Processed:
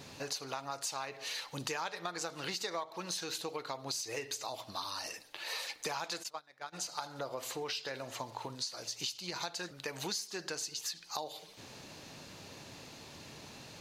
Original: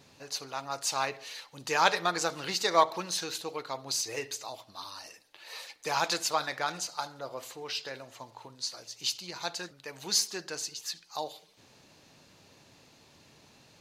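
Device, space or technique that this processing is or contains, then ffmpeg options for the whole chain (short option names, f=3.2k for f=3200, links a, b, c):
serial compression, leveller first: -filter_complex "[0:a]acompressor=threshold=-37dB:ratio=1.5,acompressor=threshold=-44dB:ratio=6,asplit=3[a][b][c];[a]afade=t=out:st=6.22:d=0.02[d];[b]agate=range=-23dB:threshold=-44dB:ratio=16:detection=peak,afade=t=in:st=6.22:d=0.02,afade=t=out:st=6.72:d=0.02[e];[c]afade=t=in:st=6.72:d=0.02[f];[d][e][f]amix=inputs=3:normalize=0,volume=8dB"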